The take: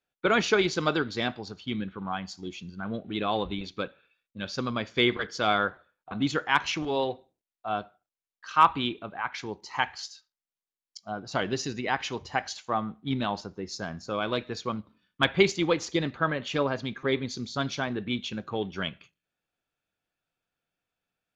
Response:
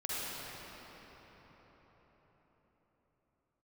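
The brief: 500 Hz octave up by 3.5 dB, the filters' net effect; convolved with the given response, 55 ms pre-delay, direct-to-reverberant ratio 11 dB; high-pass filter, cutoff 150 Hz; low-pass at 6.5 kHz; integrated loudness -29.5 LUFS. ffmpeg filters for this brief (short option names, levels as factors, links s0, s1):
-filter_complex "[0:a]highpass=150,lowpass=6500,equalizer=f=500:t=o:g=4.5,asplit=2[s0][s1];[1:a]atrim=start_sample=2205,adelay=55[s2];[s1][s2]afir=irnorm=-1:irlink=0,volume=0.15[s3];[s0][s3]amix=inputs=2:normalize=0,volume=0.841"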